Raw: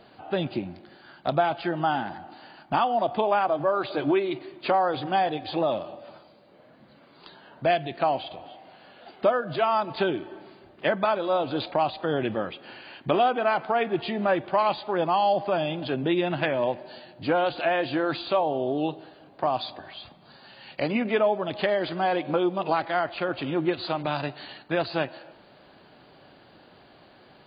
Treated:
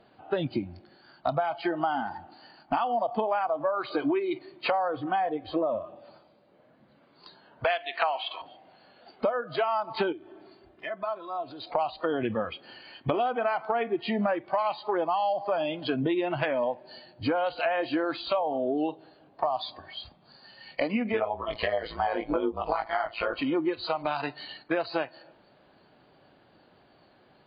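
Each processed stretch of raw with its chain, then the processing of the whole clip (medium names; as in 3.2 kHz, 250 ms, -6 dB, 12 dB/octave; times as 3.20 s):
4.88–5.96 s: Gaussian low-pass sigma 2.5 samples + band-stop 840 Hz, Q 8.7
7.64–8.42 s: high-pass 320 Hz 24 dB/octave + high-order bell 1.9 kHz +8 dB 2.4 oct + tape noise reduction on one side only encoder only
10.12–11.72 s: high-pass 47 Hz + comb 2.9 ms, depth 37% + compression 2.5:1, threshold -39 dBFS
21.12–23.36 s: doubling 20 ms -2 dB + AM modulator 110 Hz, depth 70%
whole clip: spectral noise reduction 13 dB; treble shelf 3.9 kHz -8 dB; compression 5:1, threshold -32 dBFS; trim +7 dB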